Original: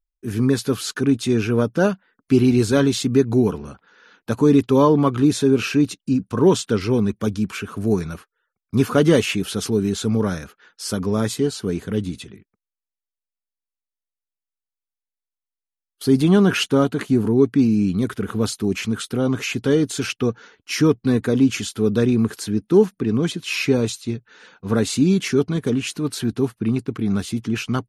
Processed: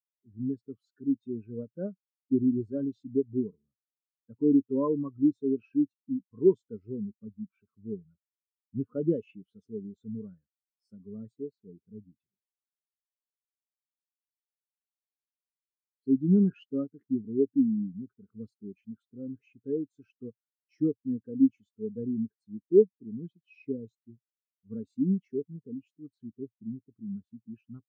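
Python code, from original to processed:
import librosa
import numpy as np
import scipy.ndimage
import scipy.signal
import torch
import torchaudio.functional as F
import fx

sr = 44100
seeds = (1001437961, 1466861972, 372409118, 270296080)

y = fx.spectral_expand(x, sr, expansion=2.5)
y = y * 10.0 ** (-5.0 / 20.0)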